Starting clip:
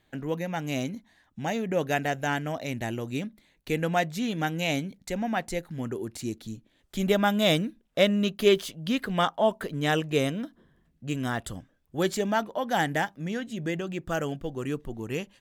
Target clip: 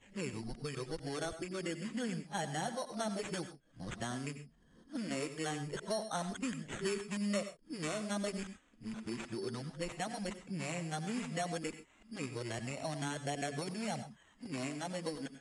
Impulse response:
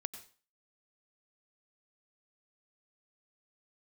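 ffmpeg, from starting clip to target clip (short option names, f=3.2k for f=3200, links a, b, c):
-filter_complex "[0:a]areverse,acrusher=samples=9:mix=1:aa=0.000001,acrossover=split=900|6400[a][b][c];[a]acompressor=threshold=-36dB:ratio=4[d];[b]acompressor=threshold=-42dB:ratio=4[e];[c]acompressor=threshold=-39dB:ratio=4[f];[d][e][f]amix=inputs=3:normalize=0,flanger=delay=0.3:depth=6.4:regen=-42:speed=0.15:shape=triangular[g];[1:a]atrim=start_sample=2205,atrim=end_sample=6174[h];[g][h]afir=irnorm=-1:irlink=0,aresample=22050,aresample=44100,volume=3dB"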